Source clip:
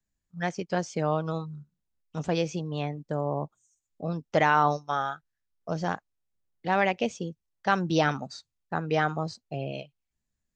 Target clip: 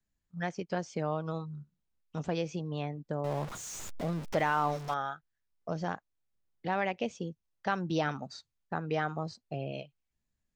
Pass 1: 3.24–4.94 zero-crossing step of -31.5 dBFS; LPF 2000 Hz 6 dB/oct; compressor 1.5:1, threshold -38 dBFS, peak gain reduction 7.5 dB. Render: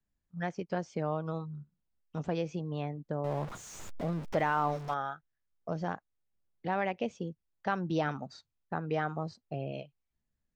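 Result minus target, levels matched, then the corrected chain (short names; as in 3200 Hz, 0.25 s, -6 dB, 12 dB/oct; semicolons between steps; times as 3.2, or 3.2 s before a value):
4000 Hz band -4.0 dB
3.24–4.94 zero-crossing step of -31.5 dBFS; LPF 5200 Hz 6 dB/oct; compressor 1.5:1, threshold -38 dBFS, peak gain reduction 8 dB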